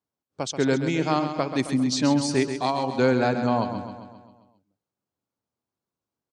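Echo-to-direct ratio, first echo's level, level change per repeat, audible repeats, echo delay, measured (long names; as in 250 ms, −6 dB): −7.5 dB, −9.0 dB, −5.0 dB, 6, 133 ms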